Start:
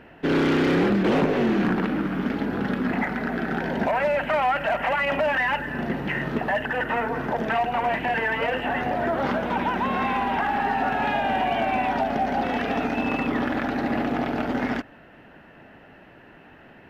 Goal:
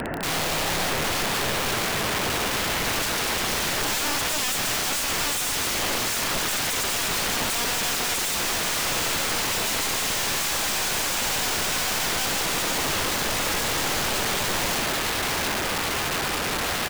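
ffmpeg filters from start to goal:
ffmpeg -i in.wav -af "aecho=1:1:680|1360|2040|2720|3400|4080:0.316|0.171|0.0922|0.0498|0.0269|0.0145,dynaudnorm=framelen=520:gausssize=13:maxgain=11dB,aeval=exprs='(tanh(7.94*val(0)+0.6)-tanh(0.6))/7.94':channel_layout=same,apsyclip=19dB,acompressor=threshold=-24dB:ratio=3,lowpass=frequency=1900:width=0.5412,lowpass=frequency=1900:width=1.3066,aeval=exprs='(mod(16.8*val(0)+1,2)-1)/16.8':channel_layout=same,volume=3dB" out.wav

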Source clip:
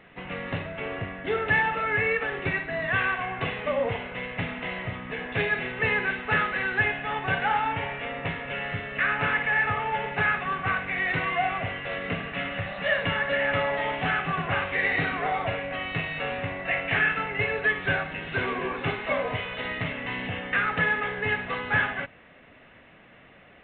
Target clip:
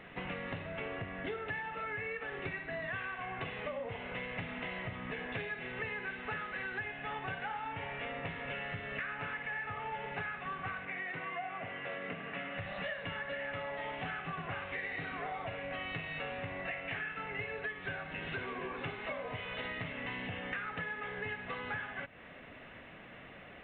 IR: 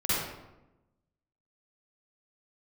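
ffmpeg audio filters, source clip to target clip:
-filter_complex "[0:a]acompressor=threshold=-38dB:ratio=10,asettb=1/sr,asplit=3[link_01][link_02][link_03];[link_01]atrim=end=10.854[link_04];[link_02]atrim=start=10.85:end=12.58,asetpts=PTS-STARTPTS,afade=type=in:duration=0.004:curve=qsin,afade=type=out:start_time=1.726:duration=0.004:curve=qsin,highpass=160,lowpass=2900[link_05];[link_03]atrim=start=12.576[link_06];[link_04][link_05]acrossfade=duration=0.004:curve1=hsin:curve2=qsin[link_07];[link_07][link_06]acrossfade=duration=0.004:curve1=qsin:curve2=hsin,volume=1dB"

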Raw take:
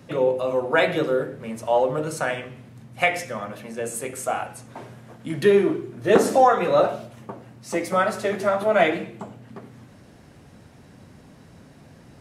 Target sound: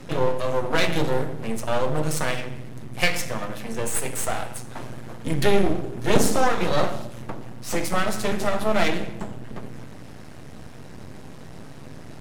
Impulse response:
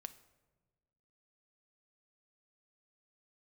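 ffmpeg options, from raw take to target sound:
-filter_complex "[0:a]acrossover=split=240|3000[link_01][link_02][link_03];[link_02]acompressor=threshold=-48dB:ratio=1.5[link_04];[link_01][link_04][link_03]amix=inputs=3:normalize=0,aeval=exprs='max(val(0),0)':channel_layout=same,asplit=2[link_05][link_06];[1:a]atrim=start_sample=2205,asetrate=32193,aresample=44100[link_07];[link_06][link_07]afir=irnorm=-1:irlink=0,volume=12dB[link_08];[link_05][link_08]amix=inputs=2:normalize=0,volume=-1dB"

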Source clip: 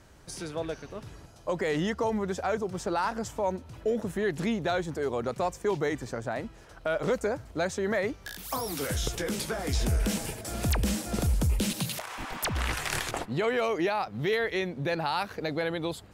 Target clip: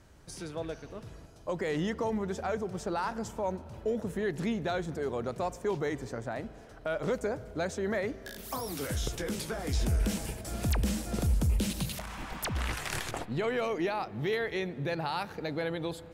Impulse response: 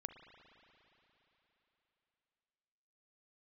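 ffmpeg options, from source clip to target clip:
-filter_complex "[0:a]asplit=2[link_01][link_02];[1:a]atrim=start_sample=2205,lowshelf=frequency=450:gain=9[link_03];[link_02][link_03]afir=irnorm=-1:irlink=0,volume=-5dB[link_04];[link_01][link_04]amix=inputs=2:normalize=0,volume=-7dB"

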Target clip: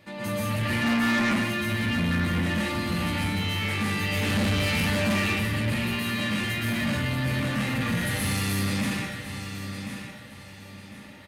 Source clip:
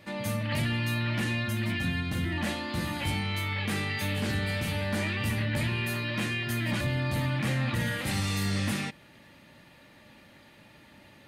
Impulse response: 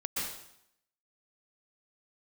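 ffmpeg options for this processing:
-filter_complex "[0:a]asettb=1/sr,asplit=3[link_01][link_02][link_03];[link_01]atrim=end=0.694[link_04];[link_02]atrim=start=0.69:end=1.22,asetpts=PTS-STARTPTS,afade=type=in:duration=0.004:curve=qsin,afade=type=out:start_time=0.526:duration=0.004:curve=qsin,equalizer=frequency=125:width_type=o:width=1:gain=-4,equalizer=frequency=250:width_type=o:width=1:gain=10,equalizer=frequency=500:width_type=o:width=1:gain=4,equalizer=frequency=1000:width_type=o:width=1:gain=9,equalizer=frequency=2000:width_type=o:width=1:gain=10,equalizer=frequency=4000:width_type=o:width=1:gain=-9,equalizer=frequency=8000:width_type=o:width=1:gain=7[link_05];[link_03]atrim=start=1.216[link_06];[link_04][link_05]acrossfade=duration=0.004:curve1=hsin:curve2=qsin[link_07];[link_07][link_06]acrossfade=duration=0.004:curve1=qsin:curve2=hsin,aecho=1:1:1053|2106|3159:0.299|0.0896|0.0269,asettb=1/sr,asplit=3[link_08][link_09][link_10];[link_08]atrim=end=4.124[link_11];[link_09]atrim=start=4.12:end=5.2,asetpts=PTS-STARTPTS,afade=type=in:duration=0.004:curve=qsin,afade=type=out:start_time=1.076:duration=0.004:curve=qsin,acontrast=36[link_12];[link_10]atrim=start=5.196[link_13];[link_11][link_12]acrossfade=duration=0.004:curve1=hsin:curve2=qsin[link_14];[link_14][link_13]acrossfade=duration=0.004:curve1=qsin:curve2=hsin,asettb=1/sr,asplit=3[link_15][link_16][link_17];[link_15]atrim=end=7.954[link_18];[link_16]atrim=start=7.95:end=8.52,asetpts=PTS-STARTPTS,afade=type=in:duration=0.004:curve=qsin,afade=type=out:start_time=0.566:duration=0.004:curve=qsin,equalizer=frequency=11000:width=3.2:gain=11[link_19];[link_17]atrim=start=8.516[link_20];[link_18][link_19]acrossfade=duration=0.004:curve1=hsin:curve2=qsin[link_21];[link_21][link_20]acrossfade=duration=0.004:curve1=qsin:curve2=hsin[link_22];[1:a]atrim=start_sample=2205[link_23];[link_22][link_23]afir=irnorm=-1:irlink=0,asoftclip=type=tanh:threshold=-20.5dB"

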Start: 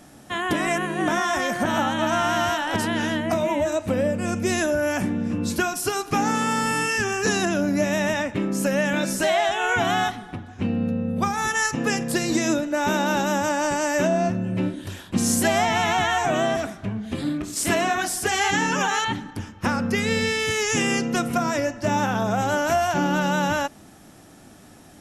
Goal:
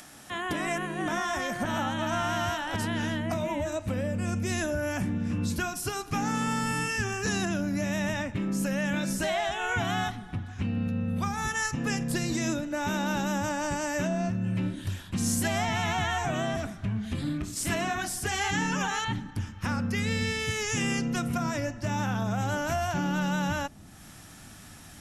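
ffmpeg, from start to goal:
ffmpeg -i in.wav -filter_complex "[0:a]asubboost=boost=3.5:cutoff=190,acrossover=split=980[link_01][link_02];[link_01]alimiter=limit=-16dB:level=0:latency=1[link_03];[link_02]acompressor=mode=upward:threshold=-34dB:ratio=2.5[link_04];[link_03][link_04]amix=inputs=2:normalize=0,volume=-6.5dB" out.wav

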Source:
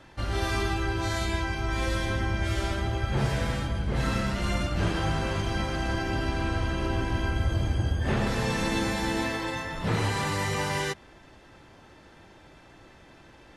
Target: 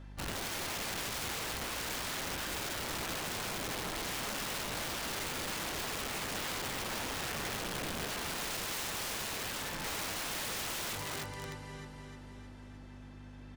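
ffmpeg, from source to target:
ffmpeg -i in.wav -af "aeval=exprs='val(0)+0.0112*(sin(2*PI*50*n/s)+sin(2*PI*2*50*n/s)/2+sin(2*PI*3*50*n/s)/3+sin(2*PI*4*50*n/s)/4+sin(2*PI*5*50*n/s)/5)':channel_layout=same,aecho=1:1:308|616|924|1232|1540|1848|2156|2464:0.668|0.388|0.225|0.13|0.0756|0.0439|0.0254|0.0148,aeval=exprs='(mod(16.8*val(0)+1,2)-1)/16.8':channel_layout=same,volume=-8.5dB" out.wav

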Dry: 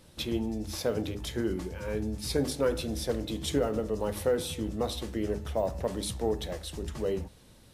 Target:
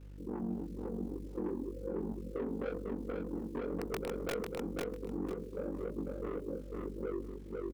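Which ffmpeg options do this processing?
ffmpeg -i in.wav -filter_complex "[0:a]asettb=1/sr,asplit=3[link_01][link_02][link_03];[link_01]atrim=end=0.634[link_04];[link_02]atrim=start=0.63:end=1.14,asetpts=PTS-STARTPTS,afade=type=in:duration=0.004:curve=qsin,afade=type=out:start_time=0.506:duration=0.004:curve=qsin,acompressor=threshold=-35dB:ratio=20[link_05];[link_03]atrim=start=1.136[link_06];[link_04][link_05]acrossfade=duration=0.004:curve1=hsin:curve2=qsin[link_07];[link_07][link_06]acrossfade=duration=0.004:curve1=qsin:curve2=hsin,asuperpass=centerf=340:order=20:qfactor=1,acrusher=bits=10:mix=0:aa=0.000001,afreqshift=-16,asoftclip=type=tanh:threshold=-31.5dB,aeval=exprs='val(0)*sin(2*PI*23*n/s)':channel_layout=same,aeval=exprs='val(0)+0.00251*(sin(2*PI*50*n/s)+sin(2*PI*2*50*n/s)/2+sin(2*PI*3*50*n/s)/3+sin(2*PI*4*50*n/s)/4+sin(2*PI*5*50*n/s)/5)':channel_layout=same,flanger=delay=18:depth=7.9:speed=1,asettb=1/sr,asplit=3[link_08][link_09][link_10];[link_08]atrim=end=3.714[link_11];[link_09]atrim=start=3.71:end=4.34,asetpts=PTS-STARTPTS,afade=type=in:duration=0.004:curve=qsin,afade=type=out:start_time=0.626:duration=0.004:curve=qsin,aeval=exprs='(mod(44.7*val(0)+1,2)-1)/44.7':channel_layout=same[link_12];[link_10]atrim=start=4.336[link_13];[link_11][link_12]acrossfade=duration=0.004:curve1=hsin:curve2=qsin[link_14];[link_14][link_13]acrossfade=duration=0.004:curve1=qsin:curve2=hsin,asplit=2[link_15][link_16];[link_16]aecho=0:1:498|996|1494:0.631|0.12|0.0228[link_17];[link_15][link_17]amix=inputs=2:normalize=0,alimiter=level_in=9.5dB:limit=-24dB:level=0:latency=1:release=69,volume=-9.5dB,volume=4.5dB" out.wav

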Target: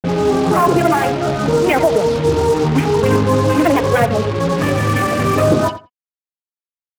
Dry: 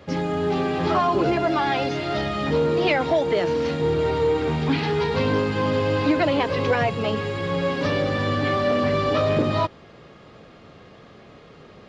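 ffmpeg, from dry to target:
ffmpeg -i in.wav -filter_complex "[0:a]afwtdn=0.0398,lowpass=4100,bandreject=frequency=580:width=15,bandreject=frequency=246.7:width_type=h:width=4,bandreject=frequency=493.4:width_type=h:width=4,bandreject=frequency=740.1:width_type=h:width=4,bandreject=frequency=986.8:width_type=h:width=4,bandreject=frequency=1233.5:width_type=h:width=4,bandreject=frequency=1480.2:width_type=h:width=4,bandreject=frequency=1726.9:width_type=h:width=4,bandreject=frequency=1973.6:width_type=h:width=4,bandreject=frequency=2220.3:width_type=h:width=4,bandreject=frequency=2467:width_type=h:width=4,bandreject=frequency=2713.7:width_type=h:width=4,bandreject=frequency=2960.4:width_type=h:width=4,bandreject=frequency=3207.1:width_type=h:width=4,bandreject=frequency=3453.8:width_type=h:width=4,bandreject=frequency=3700.5:width_type=h:width=4,bandreject=frequency=3947.2:width_type=h:width=4,bandreject=frequency=4193.9:width_type=h:width=4,bandreject=frequency=4440.6:width_type=h:width=4,bandreject=frequency=4687.3:width_type=h:width=4,bandreject=frequency=4934:width_type=h:width=4,bandreject=frequency=5180.7:width_type=h:width=4,bandreject=frequency=5427.4:width_type=h:width=4,bandreject=frequency=5674.1:width_type=h:width=4,bandreject=frequency=5920.8:width_type=h:width=4,bandreject=frequency=6167.5:width_type=h:width=4,bandreject=frequency=6414.2:width_type=h:width=4,bandreject=frequency=6660.9:width_type=h:width=4,bandreject=frequency=6907.6:width_type=h:width=4,bandreject=frequency=7154.3:width_type=h:width=4,bandreject=frequency=7401:width_type=h:width=4,bandreject=frequency=7647.7:width_type=h:width=4,bandreject=frequency=7894.4:width_type=h:width=4,bandreject=frequency=8141.1:width_type=h:width=4,acontrast=38,flanger=delay=1.4:depth=7.7:regen=-56:speed=0.29:shape=sinusoidal,acrusher=bits=4:mix=0:aa=0.5,atempo=1.7,asplit=2[link_01][link_02];[link_02]adelay=87,lowpass=frequency=2800:poles=1,volume=-12dB,asplit=2[link_03][link_04];[link_04]adelay=87,lowpass=frequency=2800:poles=1,volume=0.15[link_05];[link_01][link_03][link_05]amix=inputs=3:normalize=0,volume=7dB" out.wav

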